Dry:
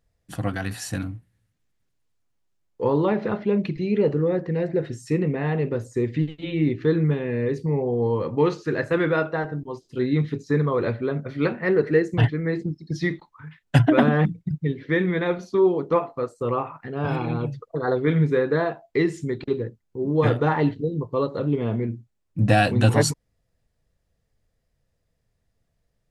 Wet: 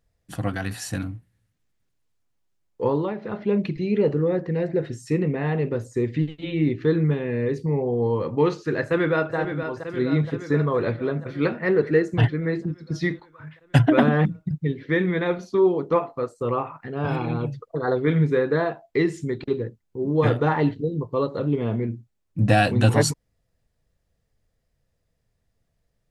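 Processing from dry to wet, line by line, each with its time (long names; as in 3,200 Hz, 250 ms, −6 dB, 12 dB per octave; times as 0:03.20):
0:02.86–0:03.51: duck −8.5 dB, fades 0.28 s
0:08.82–0:09.36: delay throw 470 ms, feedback 70%, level −8.5 dB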